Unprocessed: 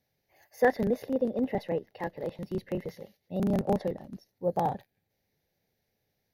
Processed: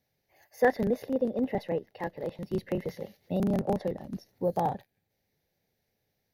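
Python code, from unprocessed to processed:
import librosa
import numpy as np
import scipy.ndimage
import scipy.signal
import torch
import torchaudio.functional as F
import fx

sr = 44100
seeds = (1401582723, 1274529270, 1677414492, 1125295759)

y = fx.band_squash(x, sr, depth_pct=70, at=(2.53, 4.6))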